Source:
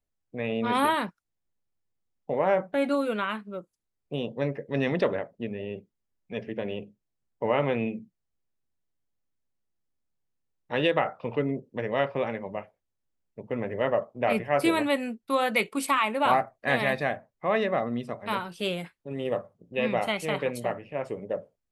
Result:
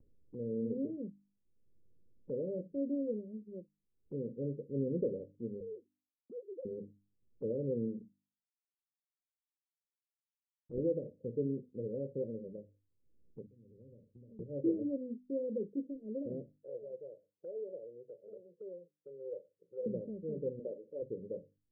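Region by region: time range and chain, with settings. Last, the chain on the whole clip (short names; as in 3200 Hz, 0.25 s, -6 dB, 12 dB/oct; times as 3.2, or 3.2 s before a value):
5.6–6.65 sine-wave speech + tilt +3 dB/oct
7.97–10.78 G.711 law mismatch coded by A + doubler 32 ms -2 dB + Doppler distortion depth 0.73 ms
13.46–14.39 passive tone stack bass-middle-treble 10-0-1 + compressor 3:1, threshold -58 dBFS
16.56–19.86 HPF 440 Hz + fixed phaser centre 610 Hz, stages 4
20.59–21.02 HPF 410 Hz + bell 720 Hz +9 dB 1.4 oct
whole clip: steep low-pass 530 Hz 96 dB/oct; notches 50/100/150/200/250/300 Hz; upward compressor, threshold -39 dBFS; gain -6.5 dB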